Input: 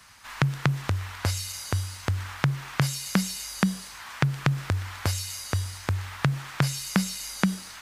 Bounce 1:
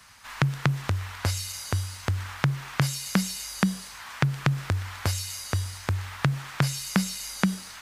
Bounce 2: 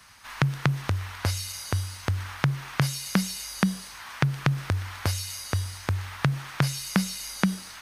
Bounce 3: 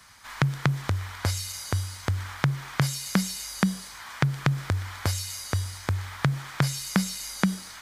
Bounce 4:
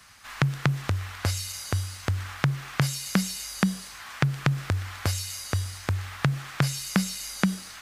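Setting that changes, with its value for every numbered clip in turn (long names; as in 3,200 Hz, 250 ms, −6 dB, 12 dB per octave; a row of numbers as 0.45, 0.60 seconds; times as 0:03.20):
notch filter, centre frequency: 320, 7,400, 2,700, 940 Hertz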